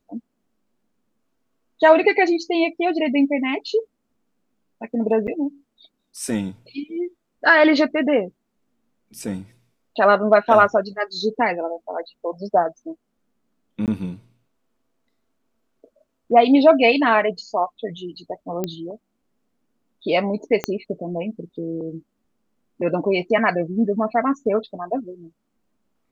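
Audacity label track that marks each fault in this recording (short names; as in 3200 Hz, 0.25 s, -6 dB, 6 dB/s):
5.270000	5.280000	gap 8.8 ms
13.860000	13.880000	gap 18 ms
18.640000	18.640000	pop -11 dBFS
20.640000	20.640000	pop -8 dBFS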